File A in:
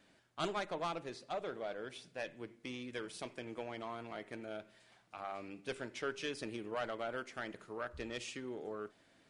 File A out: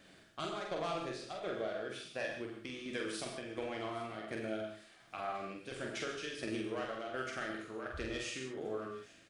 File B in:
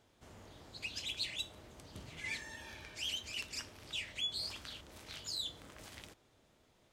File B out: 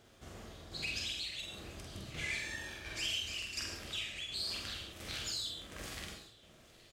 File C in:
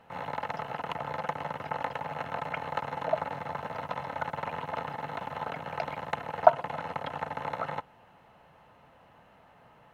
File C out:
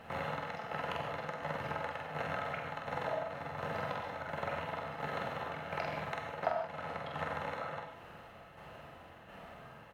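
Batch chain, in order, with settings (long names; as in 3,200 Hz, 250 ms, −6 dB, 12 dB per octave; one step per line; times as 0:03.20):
parametric band 920 Hz −8.5 dB 0.23 octaves
downward compressor 4 to 1, threshold −43 dBFS
shaped tremolo saw down 1.4 Hz, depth 60%
double-tracking delay 46 ms −3.5 dB
delay with a high-pass on its return 820 ms, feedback 52%, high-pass 1,600 Hz, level −20.5 dB
reverb whose tail is shaped and stops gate 170 ms flat, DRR 3 dB
level +6.5 dB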